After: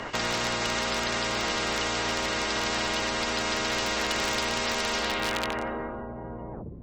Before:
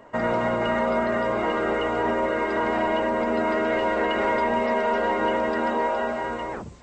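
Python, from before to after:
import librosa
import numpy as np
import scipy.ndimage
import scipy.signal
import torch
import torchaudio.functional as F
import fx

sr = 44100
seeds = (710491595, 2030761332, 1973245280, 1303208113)

y = fx.filter_sweep_lowpass(x, sr, from_hz=5300.0, to_hz=150.0, start_s=4.99, end_s=6.07, q=1.6)
y = np.clip(y, -10.0 ** (-15.0 / 20.0), 10.0 ** (-15.0 / 20.0))
y = fx.spectral_comp(y, sr, ratio=4.0)
y = F.gain(torch.from_numpy(y), 5.5).numpy()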